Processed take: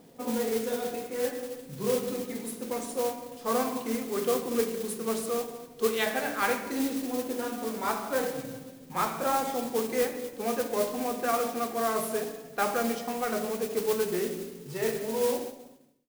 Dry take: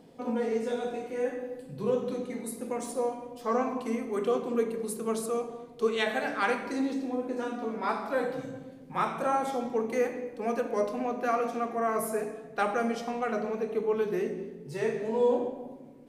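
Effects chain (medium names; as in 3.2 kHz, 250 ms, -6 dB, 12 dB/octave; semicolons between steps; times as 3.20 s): fade out at the end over 1.15 s; modulation noise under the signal 11 dB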